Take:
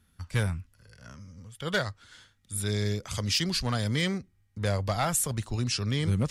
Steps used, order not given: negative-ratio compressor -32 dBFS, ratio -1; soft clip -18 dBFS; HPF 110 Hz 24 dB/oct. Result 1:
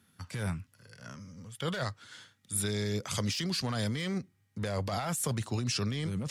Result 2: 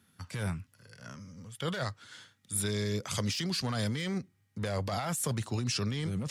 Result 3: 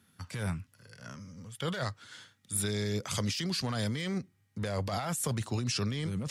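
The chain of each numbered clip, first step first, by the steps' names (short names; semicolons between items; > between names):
HPF > soft clip > negative-ratio compressor; soft clip > HPF > negative-ratio compressor; HPF > negative-ratio compressor > soft clip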